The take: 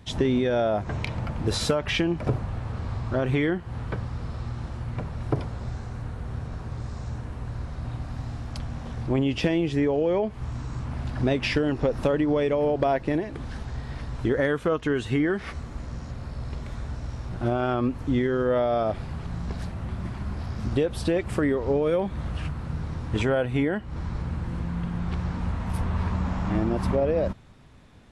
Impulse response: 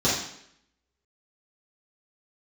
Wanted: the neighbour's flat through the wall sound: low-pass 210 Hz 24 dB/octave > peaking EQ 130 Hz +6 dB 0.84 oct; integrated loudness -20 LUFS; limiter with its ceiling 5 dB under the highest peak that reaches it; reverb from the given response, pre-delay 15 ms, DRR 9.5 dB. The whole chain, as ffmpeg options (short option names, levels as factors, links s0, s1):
-filter_complex "[0:a]alimiter=limit=0.133:level=0:latency=1,asplit=2[s0][s1];[1:a]atrim=start_sample=2205,adelay=15[s2];[s1][s2]afir=irnorm=-1:irlink=0,volume=0.0596[s3];[s0][s3]amix=inputs=2:normalize=0,lowpass=f=210:w=0.5412,lowpass=f=210:w=1.3066,equalizer=f=130:t=o:w=0.84:g=6,volume=2.99"